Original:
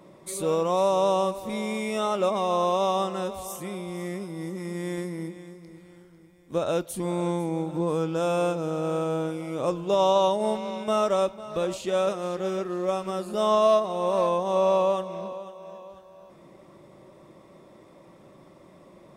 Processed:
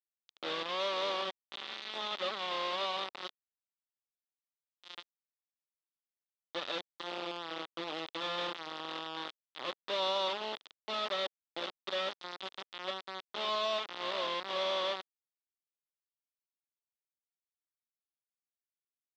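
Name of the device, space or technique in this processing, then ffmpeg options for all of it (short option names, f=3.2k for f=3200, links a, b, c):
hand-held game console: -af "acrusher=bits=3:mix=0:aa=0.000001,highpass=450,equalizer=f=460:t=q:w=4:g=-6,equalizer=f=670:t=q:w=4:g=-6,equalizer=f=960:t=q:w=4:g=-3,equalizer=f=1.6k:t=q:w=4:g=-6,equalizer=f=2.3k:t=q:w=4:g=-5,equalizer=f=3.5k:t=q:w=4:g=7,lowpass=f=4.1k:w=0.5412,lowpass=f=4.1k:w=1.3066,volume=-8.5dB"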